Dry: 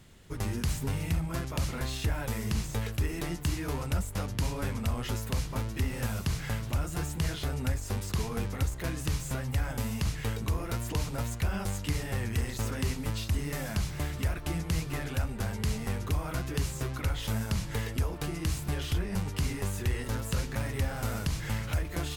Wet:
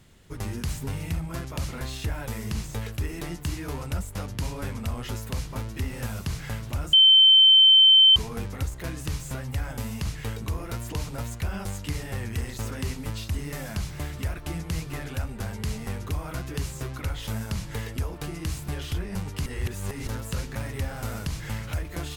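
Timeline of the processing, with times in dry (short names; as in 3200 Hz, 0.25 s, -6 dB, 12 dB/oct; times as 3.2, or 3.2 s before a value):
6.93–8.16 bleep 3090 Hz -11.5 dBFS
19.46–20.07 reverse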